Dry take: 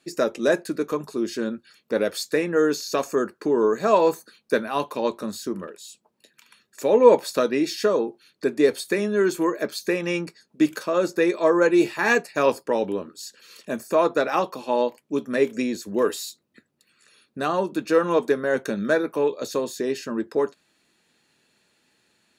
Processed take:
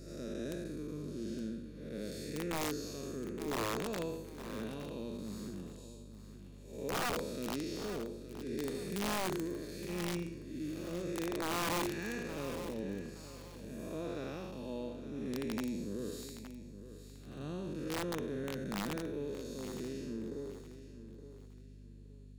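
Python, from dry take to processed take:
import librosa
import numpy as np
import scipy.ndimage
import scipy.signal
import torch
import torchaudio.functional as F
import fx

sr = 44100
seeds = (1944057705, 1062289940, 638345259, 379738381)

y = fx.spec_blur(x, sr, span_ms=272.0)
y = fx.tone_stack(y, sr, knobs='10-0-1')
y = fx.add_hum(y, sr, base_hz=50, snr_db=12)
y = (np.mod(10.0 ** (40.0 / 20.0) * y + 1.0, 2.0) - 1.0) / 10.0 ** (40.0 / 20.0)
y = fx.echo_feedback(y, sr, ms=868, feedback_pct=30, wet_db=-12.5)
y = y * 10.0 ** (10.5 / 20.0)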